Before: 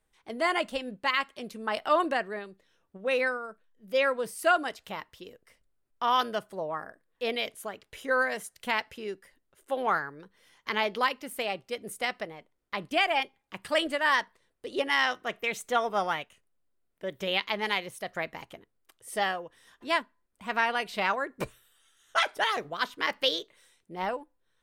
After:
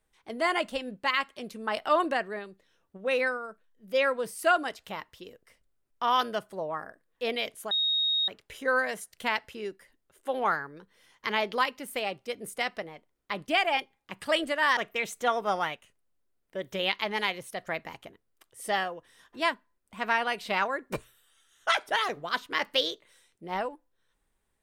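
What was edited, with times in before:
0:07.71: insert tone 3,750 Hz −23.5 dBFS 0.57 s
0:14.20–0:15.25: remove

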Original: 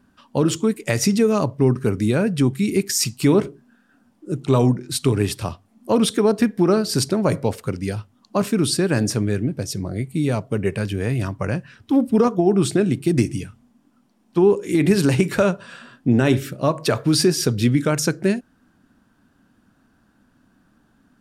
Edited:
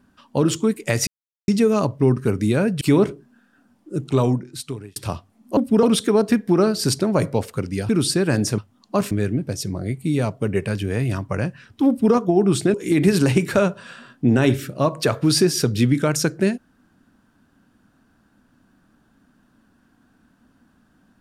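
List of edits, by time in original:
0:01.07: splice in silence 0.41 s
0:02.40–0:03.17: remove
0:04.40–0:05.32: fade out
0:07.99–0:08.52: move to 0:09.21
0:11.98–0:12.24: duplicate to 0:05.93
0:12.84–0:14.57: remove

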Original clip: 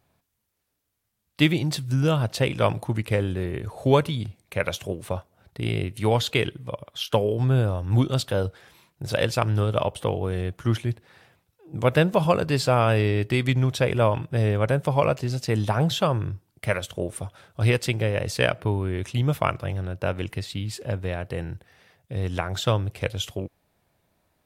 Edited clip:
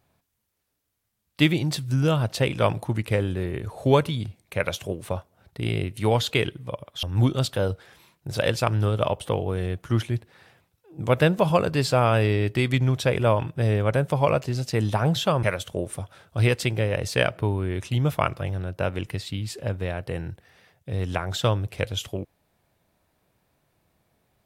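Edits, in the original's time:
0:07.03–0:07.78: remove
0:16.18–0:16.66: remove

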